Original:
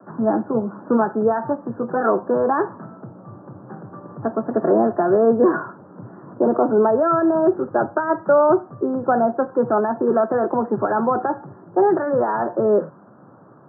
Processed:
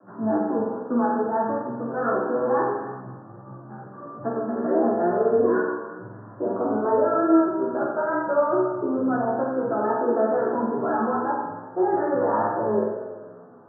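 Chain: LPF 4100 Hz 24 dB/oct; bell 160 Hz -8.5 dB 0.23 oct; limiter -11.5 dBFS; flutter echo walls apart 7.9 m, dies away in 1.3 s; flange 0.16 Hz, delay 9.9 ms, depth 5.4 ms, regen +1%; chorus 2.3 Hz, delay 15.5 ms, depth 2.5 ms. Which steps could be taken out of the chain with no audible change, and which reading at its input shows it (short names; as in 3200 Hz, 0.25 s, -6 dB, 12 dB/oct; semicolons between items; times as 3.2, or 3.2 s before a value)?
LPF 4100 Hz: input band ends at 1700 Hz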